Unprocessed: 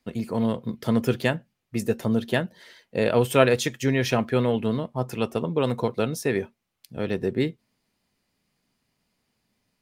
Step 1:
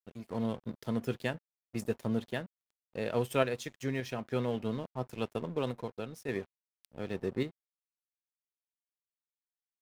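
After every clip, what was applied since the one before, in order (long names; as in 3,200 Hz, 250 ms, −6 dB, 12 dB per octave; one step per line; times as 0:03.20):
dead-zone distortion −39.5 dBFS
sample-and-hold tremolo
level −7.5 dB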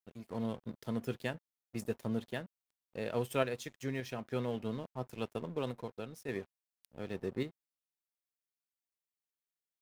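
high-shelf EQ 9,800 Hz +3.5 dB
level −3.5 dB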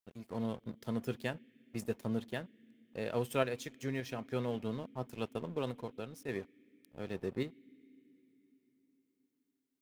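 on a send at −11 dB: formant filter i + convolution reverb RT60 4.6 s, pre-delay 53 ms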